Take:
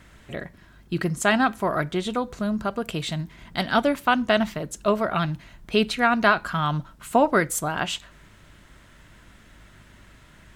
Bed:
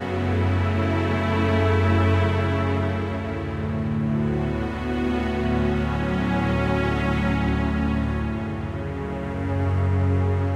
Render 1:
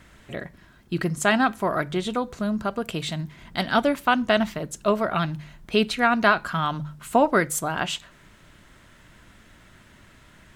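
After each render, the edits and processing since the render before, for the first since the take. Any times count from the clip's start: de-hum 50 Hz, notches 3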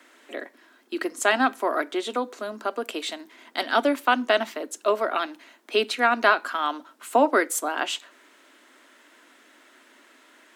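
steep high-pass 250 Hz 72 dB/octave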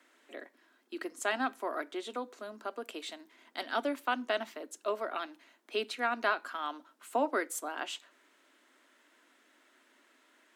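trim -11 dB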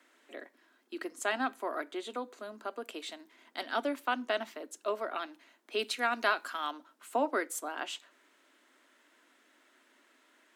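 1.23–2.87 s: band-stop 5.5 kHz; 5.79–6.71 s: treble shelf 3.3 kHz +8.5 dB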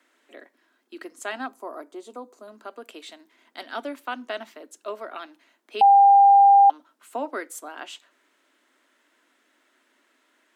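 1.46–2.48 s: high-order bell 2.4 kHz -11 dB; 5.81–6.70 s: bleep 798 Hz -10 dBFS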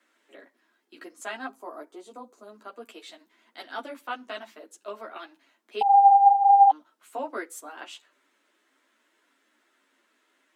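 three-phase chorus

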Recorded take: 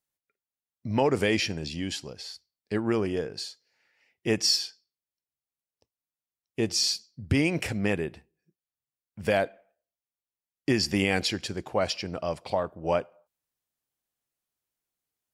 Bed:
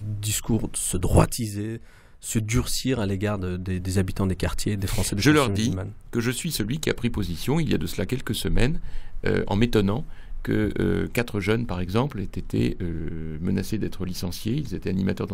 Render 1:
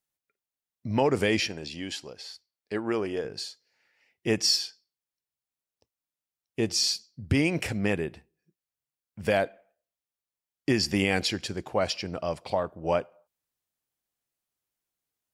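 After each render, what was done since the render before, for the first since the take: 1.47–3.25 s: tone controls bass -9 dB, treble -3 dB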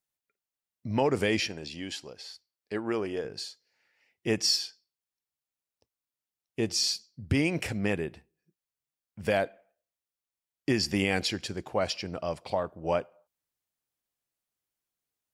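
trim -2 dB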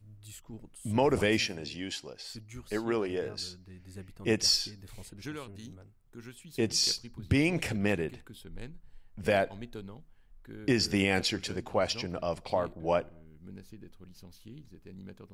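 add bed -22.5 dB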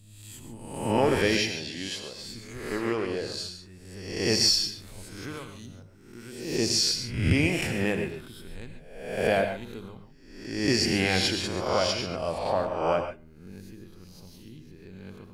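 reverse spectral sustain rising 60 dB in 0.84 s; gated-style reverb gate 160 ms rising, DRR 6.5 dB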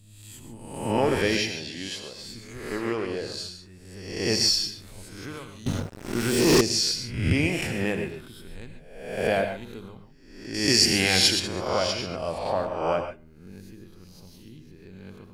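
5.66–6.61 s: waveshaping leveller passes 5; 10.54–11.40 s: treble shelf 3.5 kHz +12 dB

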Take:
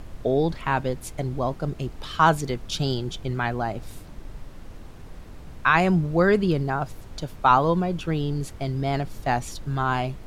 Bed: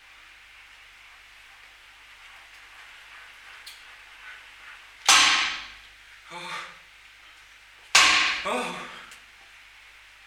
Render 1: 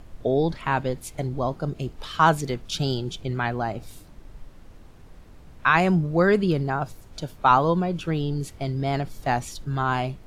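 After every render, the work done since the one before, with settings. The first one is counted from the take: noise print and reduce 6 dB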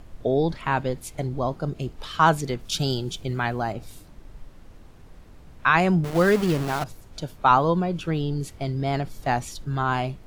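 2.59–3.73 s: treble shelf 6.8 kHz +9 dB; 6.04–6.84 s: small samples zeroed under -27 dBFS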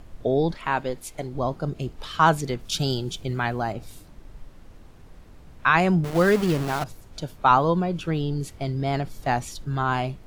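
0.51–1.35 s: peaking EQ 97 Hz -9.5 dB 2 oct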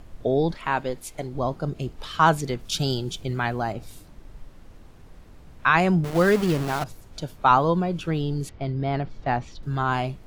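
8.49–9.63 s: distance through air 200 m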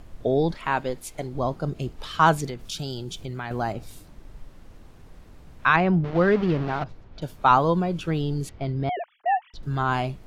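2.48–3.51 s: compression 2.5:1, threshold -31 dBFS; 5.76–7.22 s: distance through air 260 m; 8.89–9.54 s: formants replaced by sine waves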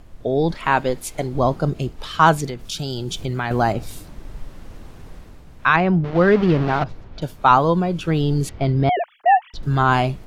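level rider gain up to 9 dB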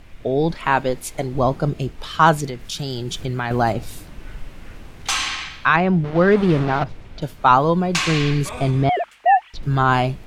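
add bed -5.5 dB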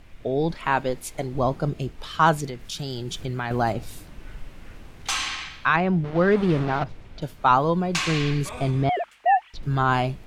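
trim -4.5 dB

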